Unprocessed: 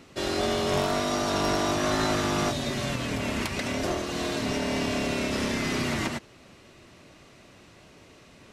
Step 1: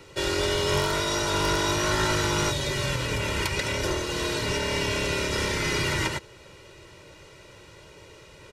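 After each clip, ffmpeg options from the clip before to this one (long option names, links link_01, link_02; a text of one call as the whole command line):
ffmpeg -i in.wav -filter_complex "[0:a]aecho=1:1:2.1:0.79,acrossover=split=400|830|2400[link_01][link_02][link_03][link_04];[link_02]acompressor=threshold=-41dB:ratio=6[link_05];[link_01][link_05][link_03][link_04]amix=inputs=4:normalize=0,volume=2dB" out.wav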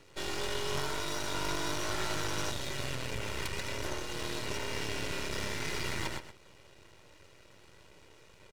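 ffmpeg -i in.wav -filter_complex "[0:a]aeval=exprs='max(val(0),0)':channel_layout=same,asplit=2[link_01][link_02];[link_02]adelay=128.3,volume=-10dB,highshelf=frequency=4000:gain=-2.89[link_03];[link_01][link_03]amix=inputs=2:normalize=0,volume=-6dB" out.wav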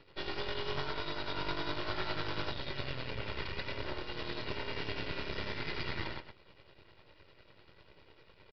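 ffmpeg -i in.wav -af "tremolo=f=10:d=0.52,aresample=11025,aresample=44100" out.wav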